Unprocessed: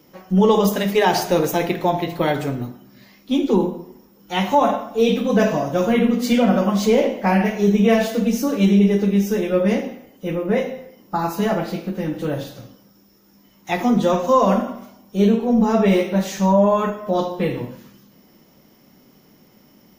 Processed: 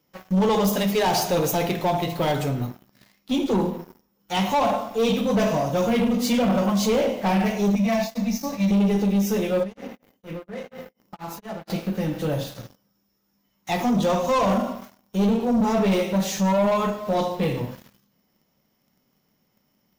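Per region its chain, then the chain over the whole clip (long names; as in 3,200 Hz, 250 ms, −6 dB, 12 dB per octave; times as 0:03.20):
0:07.75–0:08.71: downward expander −20 dBFS + phaser with its sweep stopped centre 2,100 Hz, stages 8
0:09.63–0:11.70: parametric band 280 Hz +3 dB 1.9 octaves + downward compressor 10 to 1, threshold −28 dBFS + tremolo along a rectified sine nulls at 4.2 Hz
whole clip: parametric band 330 Hz −6.5 dB 1.1 octaves; leveller curve on the samples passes 3; dynamic equaliser 1,700 Hz, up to −6 dB, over −33 dBFS, Q 1.5; level −8.5 dB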